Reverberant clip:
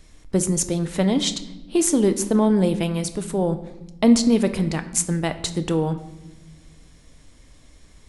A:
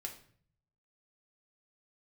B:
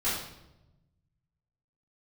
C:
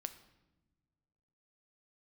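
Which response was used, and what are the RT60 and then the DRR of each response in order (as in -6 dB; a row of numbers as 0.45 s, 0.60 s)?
C; 0.55 s, 0.95 s, no single decay rate; 1.0 dB, -13.5 dB, 9.5 dB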